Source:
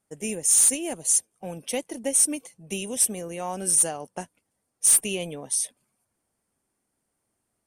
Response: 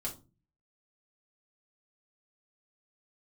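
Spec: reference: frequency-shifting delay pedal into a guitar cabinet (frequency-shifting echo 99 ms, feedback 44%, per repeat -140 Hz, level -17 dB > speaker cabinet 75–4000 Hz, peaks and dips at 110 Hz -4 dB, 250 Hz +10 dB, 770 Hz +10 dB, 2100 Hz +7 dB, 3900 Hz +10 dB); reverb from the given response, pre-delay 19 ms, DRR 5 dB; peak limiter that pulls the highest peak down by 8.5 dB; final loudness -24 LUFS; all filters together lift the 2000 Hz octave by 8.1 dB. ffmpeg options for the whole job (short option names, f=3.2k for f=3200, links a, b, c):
-filter_complex "[0:a]equalizer=f=2k:t=o:g=5.5,alimiter=limit=-18dB:level=0:latency=1,asplit=2[a][b];[1:a]atrim=start_sample=2205,adelay=19[c];[b][c]afir=irnorm=-1:irlink=0,volume=-6dB[d];[a][d]amix=inputs=2:normalize=0,asplit=5[e][f][g][h][i];[f]adelay=99,afreqshift=-140,volume=-17dB[j];[g]adelay=198,afreqshift=-280,volume=-24.1dB[k];[h]adelay=297,afreqshift=-420,volume=-31.3dB[l];[i]adelay=396,afreqshift=-560,volume=-38.4dB[m];[e][j][k][l][m]amix=inputs=5:normalize=0,highpass=75,equalizer=f=110:t=q:w=4:g=-4,equalizer=f=250:t=q:w=4:g=10,equalizer=f=770:t=q:w=4:g=10,equalizer=f=2.1k:t=q:w=4:g=7,equalizer=f=3.9k:t=q:w=4:g=10,lowpass=f=4k:w=0.5412,lowpass=f=4k:w=1.3066,volume=5dB"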